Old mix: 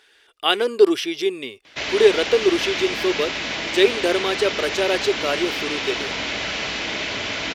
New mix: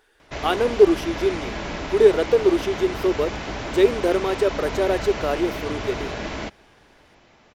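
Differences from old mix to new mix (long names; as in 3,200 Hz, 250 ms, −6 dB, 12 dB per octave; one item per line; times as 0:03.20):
background: entry −1.45 s
master: remove meter weighting curve D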